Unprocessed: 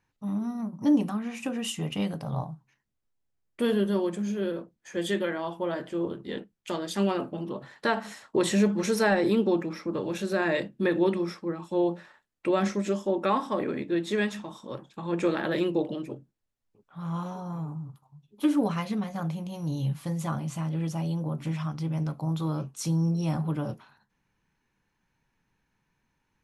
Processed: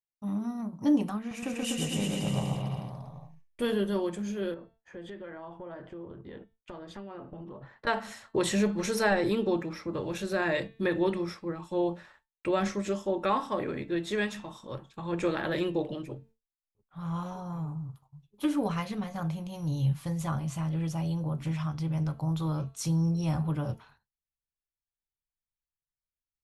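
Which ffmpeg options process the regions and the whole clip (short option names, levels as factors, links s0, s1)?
-filter_complex "[0:a]asettb=1/sr,asplit=3[s0][s1][s2];[s0]atrim=end=1.184[s3];[s1]atrim=start=1.18:end=3.62,asetpts=PTS-STARTPTS,afade=t=in:d=0.004:c=qsin,afade=t=out:st=2.436:d=0.004:c=qsin,equalizer=f=1200:w=0.52:g=-4,aecho=1:1:130|247|352.3|447.1|532.4|609.1|678.2|740.4|796.4|846.7:0.794|0.631|0.501|0.398|0.316|0.251|0.2|0.158|0.126|0.1,atrim=end_sample=107604[s4];[s2]atrim=start=3.616[s5];[s3][s4]acrossfade=d=0.004:c1=hsin:c2=qsin[s6];[s6][s5]acrossfade=d=0.004:c1=qsin:c2=hsin,asettb=1/sr,asplit=3[s7][s8][s9];[s7]atrim=end=4.544[s10];[s8]atrim=start=4.54:end=7.87,asetpts=PTS-STARTPTS,afade=t=in:d=0.004:c=qsin,afade=t=out:st=3.326:d=0.004:c=qsin,lowpass=1400,aemphasis=mode=production:type=75fm,acompressor=threshold=0.0141:ratio=5:attack=3.2:release=140:knee=1:detection=peak[s11];[s9]atrim=start=7.866[s12];[s10][s11]acrossfade=d=0.004:c1=hsin:c2=qsin[s13];[s13][s12]acrossfade=d=0.004:c1=qsin:c2=hsin,bandreject=f=224.2:t=h:w=4,bandreject=f=448.4:t=h:w=4,bandreject=f=672.6:t=h:w=4,bandreject=f=896.8:t=h:w=4,bandreject=f=1121:t=h:w=4,bandreject=f=1345.2:t=h:w=4,bandreject=f=1569.4:t=h:w=4,bandreject=f=1793.6:t=h:w=4,bandreject=f=2017.8:t=h:w=4,bandreject=f=2242:t=h:w=4,bandreject=f=2466.2:t=h:w=4,bandreject=f=2690.4:t=h:w=4,bandreject=f=2914.6:t=h:w=4,bandreject=f=3138.8:t=h:w=4,bandreject=f=3363:t=h:w=4,bandreject=f=3587.2:t=h:w=4,bandreject=f=3811.4:t=h:w=4,bandreject=f=4035.6:t=h:w=4,bandreject=f=4259.8:t=h:w=4,bandreject=f=4484:t=h:w=4,bandreject=f=4708.2:t=h:w=4,agate=range=0.0224:threshold=0.00224:ratio=3:detection=peak,asubboost=boost=6.5:cutoff=83,volume=0.891"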